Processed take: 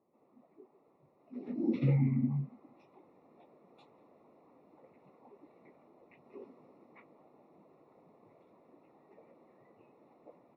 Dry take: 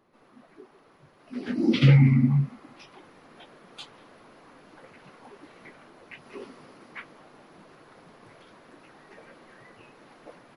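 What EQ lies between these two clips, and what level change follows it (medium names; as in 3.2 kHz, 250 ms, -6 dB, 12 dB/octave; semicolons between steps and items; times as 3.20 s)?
boxcar filter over 28 samples; high-pass 260 Hz 6 dB/octave; -5.5 dB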